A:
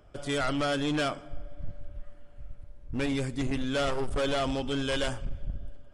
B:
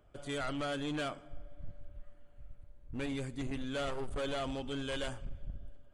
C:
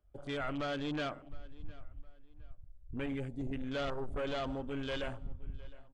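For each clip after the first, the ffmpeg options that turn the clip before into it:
ffmpeg -i in.wav -af "bandreject=frequency=5300:width=5.6,volume=-8dB" out.wav
ffmpeg -i in.wav -filter_complex "[0:a]afwtdn=0.00447,asplit=2[link_01][link_02];[link_02]adelay=712,lowpass=frequency=4400:poles=1,volume=-20.5dB,asplit=2[link_03][link_04];[link_04]adelay=712,lowpass=frequency=4400:poles=1,volume=0.31[link_05];[link_01][link_03][link_05]amix=inputs=3:normalize=0" out.wav

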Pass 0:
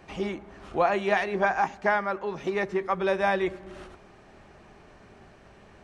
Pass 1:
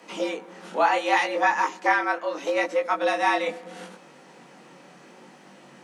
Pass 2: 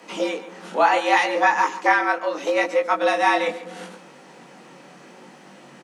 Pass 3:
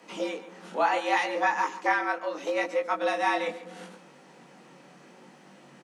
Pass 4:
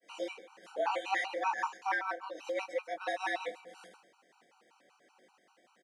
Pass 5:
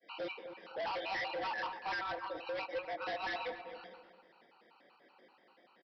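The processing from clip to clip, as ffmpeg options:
ffmpeg -i in.wav -af "flanger=delay=18.5:depth=6.7:speed=0.72,highshelf=frequency=4300:gain=11,afreqshift=140,volume=5dB" out.wav
ffmpeg -i in.wav -af "aecho=1:1:140:0.168,volume=3.5dB" out.wav
ffmpeg -i in.wav -af "lowshelf=frequency=110:gain=8,volume=-7.5dB" out.wav
ffmpeg -i in.wav -af "highpass=430,agate=range=-33dB:threshold=-50dB:ratio=3:detection=peak,afftfilt=real='re*gt(sin(2*PI*5.2*pts/sr)*(1-2*mod(floor(b*sr/1024/770),2)),0)':imag='im*gt(sin(2*PI*5.2*pts/sr)*(1-2*mod(floor(b*sr/1024/770),2)),0)':win_size=1024:overlap=0.75,volume=-4dB" out.wav
ffmpeg -i in.wav -filter_complex "[0:a]aresample=11025,asoftclip=type=hard:threshold=-37.5dB,aresample=44100,asplit=2[link_01][link_02];[link_02]adelay=256,lowpass=frequency=1100:poles=1,volume=-8dB,asplit=2[link_03][link_04];[link_04]adelay=256,lowpass=frequency=1100:poles=1,volume=0.34,asplit=2[link_05][link_06];[link_06]adelay=256,lowpass=frequency=1100:poles=1,volume=0.34,asplit=2[link_07][link_08];[link_08]adelay=256,lowpass=frequency=1100:poles=1,volume=0.34[link_09];[link_01][link_03][link_05][link_07][link_09]amix=inputs=5:normalize=0,volume=1.5dB" out.wav

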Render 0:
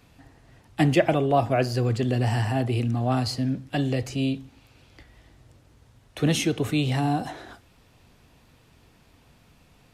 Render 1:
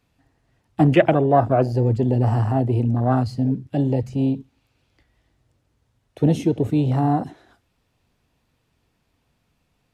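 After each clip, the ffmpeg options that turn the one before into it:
ffmpeg -i in.wav -af "afwtdn=0.0447,volume=5dB" out.wav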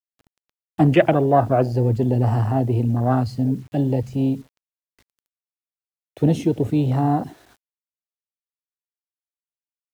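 ffmpeg -i in.wav -af "acrusher=bits=8:mix=0:aa=0.000001" out.wav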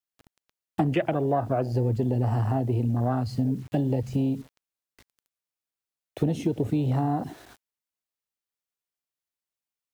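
ffmpeg -i in.wav -af "acompressor=threshold=-25dB:ratio=6,volume=3dB" out.wav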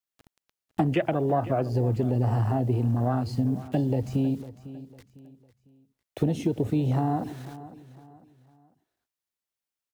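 ffmpeg -i in.wav -af "aecho=1:1:502|1004|1506:0.158|0.0555|0.0194" out.wav

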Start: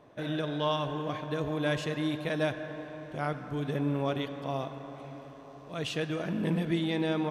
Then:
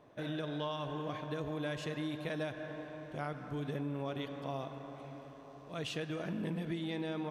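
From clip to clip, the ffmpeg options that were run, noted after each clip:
ffmpeg -i in.wav -af "acompressor=threshold=-30dB:ratio=6,volume=-4dB" out.wav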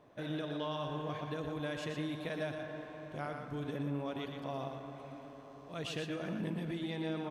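ffmpeg -i in.wav -af "aecho=1:1:119:0.501,volume=-1dB" out.wav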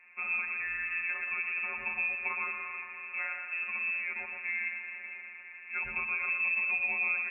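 ffmpeg -i in.wav -af "afftfilt=real='hypot(re,im)*cos(PI*b)':imag='0':win_size=1024:overlap=0.75,lowpass=frequency=2400:width_type=q:width=0.5098,lowpass=frequency=2400:width_type=q:width=0.6013,lowpass=frequency=2400:width_type=q:width=0.9,lowpass=frequency=2400:width_type=q:width=2.563,afreqshift=-2800,volume=8.5dB" out.wav

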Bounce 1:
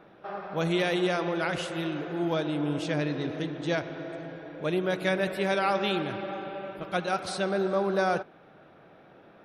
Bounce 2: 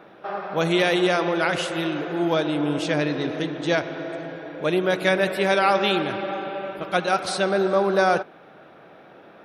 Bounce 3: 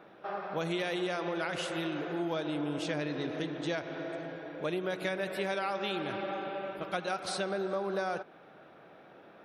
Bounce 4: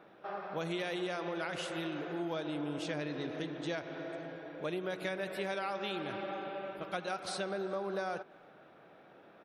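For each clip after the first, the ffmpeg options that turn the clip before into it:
ffmpeg -i in.wav -af "lowshelf=frequency=140:gain=-11,volume=7.5dB" out.wav
ffmpeg -i in.wav -af "acompressor=threshold=-23dB:ratio=6,volume=-7dB" out.wav
ffmpeg -i in.wav -filter_complex "[0:a]asplit=2[link_01][link_02];[link_02]adelay=330,highpass=300,lowpass=3400,asoftclip=type=hard:threshold=-28.5dB,volume=-26dB[link_03];[link_01][link_03]amix=inputs=2:normalize=0,volume=-3.5dB" out.wav

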